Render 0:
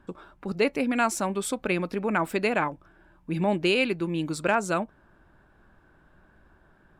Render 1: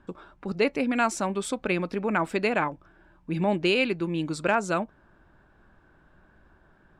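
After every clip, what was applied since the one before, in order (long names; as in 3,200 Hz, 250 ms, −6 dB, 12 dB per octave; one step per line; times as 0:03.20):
low-pass filter 8,000 Hz 12 dB per octave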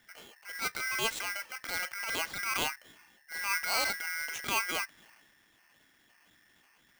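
auto-filter low-pass sine 1.9 Hz 820–4,700 Hz
transient designer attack −11 dB, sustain +6 dB
ring modulator with a square carrier 1,800 Hz
level −8 dB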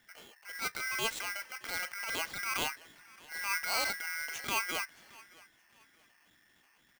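repeating echo 621 ms, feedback 31%, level −22.5 dB
level −2 dB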